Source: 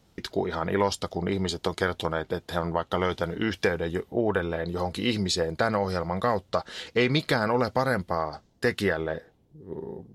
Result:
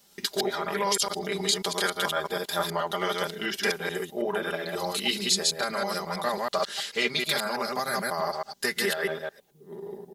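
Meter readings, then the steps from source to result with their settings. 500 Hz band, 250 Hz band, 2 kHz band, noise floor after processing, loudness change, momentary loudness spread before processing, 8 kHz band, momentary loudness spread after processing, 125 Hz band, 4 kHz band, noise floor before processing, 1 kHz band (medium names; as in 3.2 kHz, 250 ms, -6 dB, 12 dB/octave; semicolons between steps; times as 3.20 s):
-3.0 dB, -6.5 dB, +1.0 dB, -58 dBFS, 0.0 dB, 6 LU, +10.5 dB, 6 LU, -10.5 dB, +6.0 dB, -62 dBFS, -0.5 dB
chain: chunks repeated in reverse 108 ms, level -1 dB; gain riding within 3 dB 0.5 s; RIAA curve recording; comb 5 ms, depth 86%; trim -5 dB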